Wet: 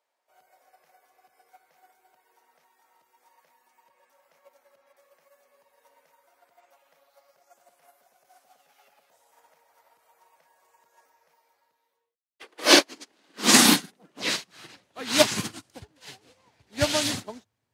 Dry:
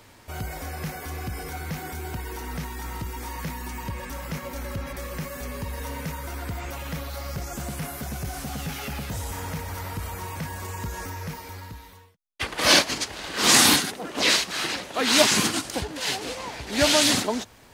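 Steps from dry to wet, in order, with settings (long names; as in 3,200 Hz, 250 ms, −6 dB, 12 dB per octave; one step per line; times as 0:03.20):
high-pass filter sweep 630 Hz → 100 Hz, 0:11.60–0:14.89
expander for the loud parts 2.5 to 1, over −34 dBFS
level +2 dB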